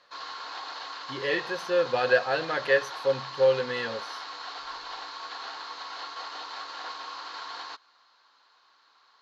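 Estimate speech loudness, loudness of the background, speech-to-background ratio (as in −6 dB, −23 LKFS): −26.5 LKFS, −38.0 LKFS, 11.5 dB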